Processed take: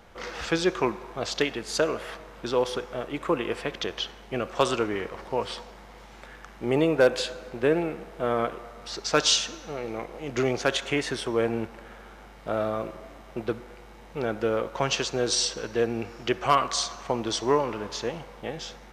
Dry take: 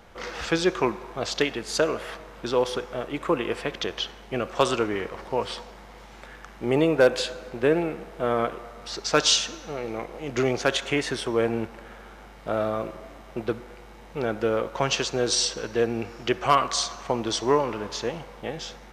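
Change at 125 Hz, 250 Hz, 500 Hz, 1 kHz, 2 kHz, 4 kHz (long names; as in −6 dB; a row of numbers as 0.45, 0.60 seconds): −1.5, −1.5, −1.5, −1.5, −1.5, −1.5 decibels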